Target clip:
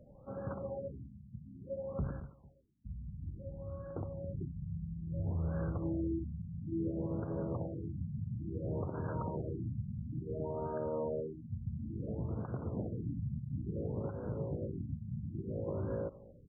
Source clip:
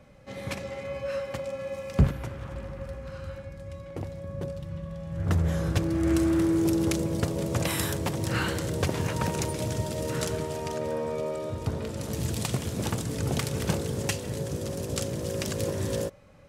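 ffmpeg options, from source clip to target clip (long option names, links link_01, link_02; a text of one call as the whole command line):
ffmpeg -i in.wav -filter_complex "[0:a]asplit=2[link_01][link_02];[link_02]acompressor=threshold=-34dB:ratio=6,volume=-2dB[link_03];[link_01][link_03]amix=inputs=2:normalize=0,asettb=1/sr,asplit=3[link_04][link_05][link_06];[link_04]atrim=end=2.204[link_07];[link_05]atrim=start=2.2:end=2.85,asetpts=PTS-STARTPTS,afade=type=in:duration=0.004:curve=qsin,afade=type=out:start_time=0.646:duration=0.004:curve=qsin,aderivative[link_08];[link_06]atrim=start=2.846[link_09];[link_07][link_08]acrossfade=duration=0.004:curve1=hsin:curve2=qsin[link_10];[link_10][link_09]acrossfade=duration=0.004:curve1=qsin:curve2=hsin,asplit=2[link_11][link_12];[link_12]adelay=224,lowpass=frequency=2000:poles=1,volume=-21dB,asplit=2[link_13][link_14];[link_14]adelay=224,lowpass=frequency=2000:poles=1,volume=0.26[link_15];[link_11][link_13][link_15]amix=inputs=3:normalize=0,alimiter=limit=-19dB:level=0:latency=1:release=95,afftfilt=real='re*lt(b*sr/1024,220*pow(1700/220,0.5+0.5*sin(2*PI*0.58*pts/sr)))':imag='im*lt(b*sr/1024,220*pow(1700/220,0.5+0.5*sin(2*PI*0.58*pts/sr)))':win_size=1024:overlap=0.75,volume=-8dB" out.wav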